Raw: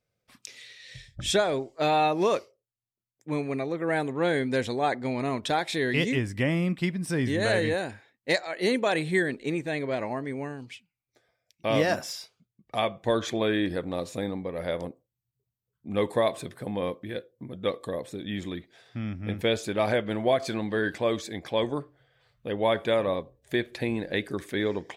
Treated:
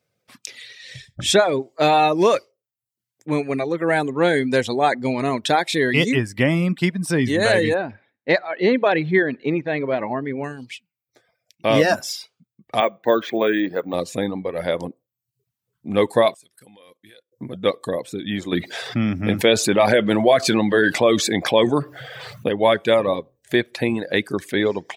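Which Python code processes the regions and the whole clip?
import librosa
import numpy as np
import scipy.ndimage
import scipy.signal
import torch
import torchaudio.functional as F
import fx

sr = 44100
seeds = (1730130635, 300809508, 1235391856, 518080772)

y = fx.chain(x, sr, fx.gaussian_blur(sigma=2.4),
    fx.echo_feedback(ms=65, feedback_pct=48, wet_db=-24), at=(7.74, 10.44))
y = fx.chain(y, sr, fx.bandpass_edges(low_hz=240.0, high_hz=2700.0),
    fx.resample_bad(factor=2, down='none', up='hold'), at=(12.8, 13.94))
y = fx.chain(y, sr, fx.lowpass(hz=11000.0, slope=12),
    fx.pre_emphasis(coefficient=0.9),
    fx.level_steps(step_db=14), at=(16.34, 17.32))
y = fx.chain(y, sr, fx.highpass(hz=97.0, slope=12),
    fx.env_flatten(amount_pct=50), at=(18.52, 22.49))
y = fx.dereverb_blind(y, sr, rt60_s=0.57)
y = scipy.signal.sosfilt(scipy.signal.butter(2, 110.0, 'highpass', fs=sr, output='sos'), y)
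y = y * librosa.db_to_amplitude(8.5)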